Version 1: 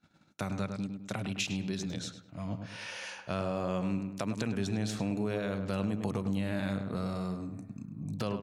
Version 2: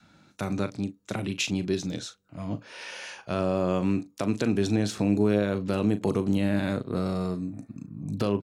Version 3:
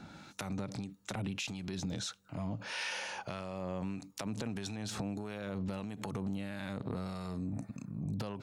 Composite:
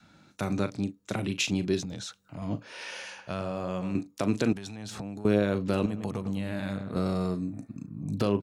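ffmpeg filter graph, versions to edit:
-filter_complex "[2:a]asplit=2[a][b];[0:a]asplit=2[c][d];[1:a]asplit=5[e][f][g][h][i];[e]atrim=end=1.832[j];[a]atrim=start=1.828:end=2.422[k];[f]atrim=start=2.418:end=3.022[l];[c]atrim=start=3.018:end=3.952[m];[g]atrim=start=3.948:end=4.532[n];[b]atrim=start=4.528:end=5.252[o];[h]atrim=start=5.248:end=5.862[p];[d]atrim=start=5.858:end=6.962[q];[i]atrim=start=6.958[r];[j][k]acrossfade=d=0.004:c1=hsin:c2=hsin[s];[s][l]acrossfade=d=0.004:c1=hsin:c2=hsin[t];[t][m]acrossfade=d=0.004:c1=hsin:c2=hsin[u];[u][n]acrossfade=d=0.004:c1=hsin:c2=hsin[v];[v][o]acrossfade=d=0.004:c1=hsin:c2=hsin[w];[w][p]acrossfade=d=0.004:c1=hsin:c2=hsin[x];[x][q]acrossfade=d=0.004:c1=hsin:c2=hsin[y];[y][r]acrossfade=d=0.004:c1=hsin:c2=hsin"

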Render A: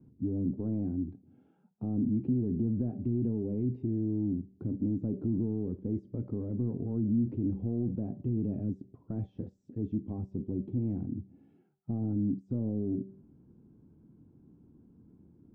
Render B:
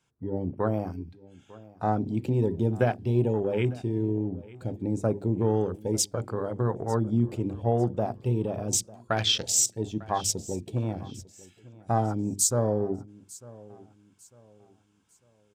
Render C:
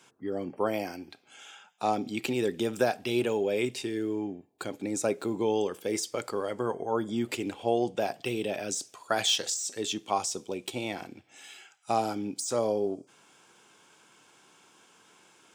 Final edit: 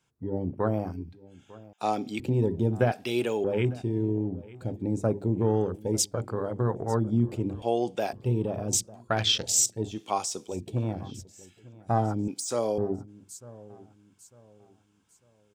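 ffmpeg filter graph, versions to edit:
-filter_complex "[2:a]asplit=5[a][b][c][d][e];[1:a]asplit=6[f][g][h][i][j][k];[f]atrim=end=1.732[l];[a]atrim=start=1.728:end=2.202[m];[g]atrim=start=2.198:end=2.922[n];[b]atrim=start=2.918:end=3.442[o];[h]atrim=start=3.438:end=7.622[p];[c]atrim=start=7.618:end=8.132[q];[i]atrim=start=8.128:end=10.01[r];[d]atrim=start=9.91:end=10.58[s];[j]atrim=start=10.48:end=12.282[t];[e]atrim=start=12.278:end=12.782[u];[k]atrim=start=12.778[v];[l][m]acrossfade=d=0.004:c1=hsin:c2=hsin[w];[w][n]acrossfade=d=0.004:c1=hsin:c2=hsin[x];[x][o]acrossfade=d=0.004:c1=hsin:c2=hsin[y];[y][p]acrossfade=d=0.004:c1=hsin:c2=hsin[z];[z][q]acrossfade=d=0.004:c1=hsin:c2=hsin[aa];[aa][r]acrossfade=d=0.004:c1=hsin:c2=hsin[ab];[ab][s]acrossfade=d=0.1:c1=tri:c2=tri[ac];[ac][t]acrossfade=d=0.1:c1=tri:c2=tri[ad];[ad][u]acrossfade=d=0.004:c1=hsin:c2=hsin[ae];[ae][v]acrossfade=d=0.004:c1=hsin:c2=hsin"

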